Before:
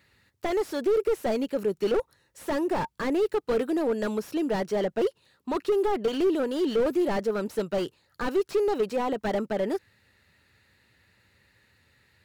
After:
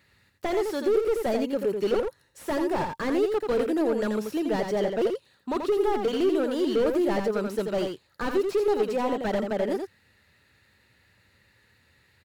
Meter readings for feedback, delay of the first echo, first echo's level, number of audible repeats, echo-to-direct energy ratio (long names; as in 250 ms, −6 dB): repeats not evenly spaced, 85 ms, −5.5 dB, 1, −5.5 dB